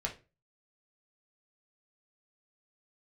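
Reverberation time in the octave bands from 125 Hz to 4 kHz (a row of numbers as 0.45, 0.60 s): 0.45, 0.35, 0.35, 0.25, 0.25, 0.25 s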